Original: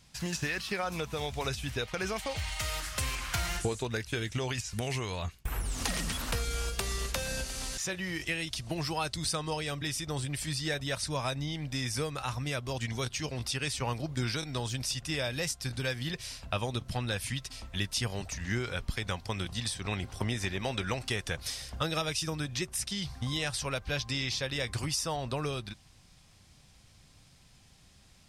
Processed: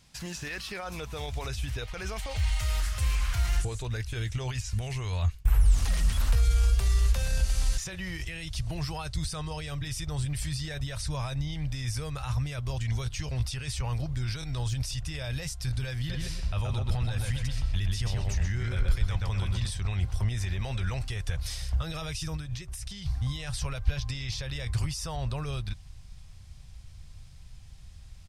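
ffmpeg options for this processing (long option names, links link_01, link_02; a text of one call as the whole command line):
ffmpeg -i in.wav -filter_complex "[0:a]asplit=3[link_01][link_02][link_03];[link_01]afade=type=out:start_time=16.08:duration=0.02[link_04];[link_02]asplit=2[link_05][link_06];[link_06]adelay=126,lowpass=frequency=2800:poles=1,volume=-3dB,asplit=2[link_07][link_08];[link_08]adelay=126,lowpass=frequency=2800:poles=1,volume=0.41,asplit=2[link_09][link_10];[link_10]adelay=126,lowpass=frequency=2800:poles=1,volume=0.41,asplit=2[link_11][link_12];[link_12]adelay=126,lowpass=frequency=2800:poles=1,volume=0.41,asplit=2[link_13][link_14];[link_14]adelay=126,lowpass=frequency=2800:poles=1,volume=0.41[link_15];[link_05][link_07][link_09][link_11][link_13][link_15]amix=inputs=6:normalize=0,afade=type=in:start_time=16.08:duration=0.02,afade=type=out:start_time=19.69:duration=0.02[link_16];[link_03]afade=type=in:start_time=19.69:duration=0.02[link_17];[link_04][link_16][link_17]amix=inputs=3:normalize=0,asettb=1/sr,asplit=3[link_18][link_19][link_20];[link_18]atrim=end=22.364[link_21];[link_19]atrim=start=22.36:end=23.06,asetpts=PTS-STARTPTS,afade=type=in:duration=0.004:curve=qsin,afade=type=out:start_time=0.696:duration=0.004:curve=qsin,acompressor=threshold=-37dB:ratio=12:attack=3.2:release=140:knee=1:detection=peak[link_22];[link_20]atrim=start=23.056[link_23];[link_21][link_22]acrossfade=duration=0.004:curve1=hsin:curve2=qsin[link_24];[link_24][link_23]acrossfade=duration=0.004:curve1=qsin:curve2=hsin,alimiter=level_in=3.5dB:limit=-24dB:level=0:latency=1:release=13,volume=-3.5dB,asubboost=boost=10:cutoff=83" out.wav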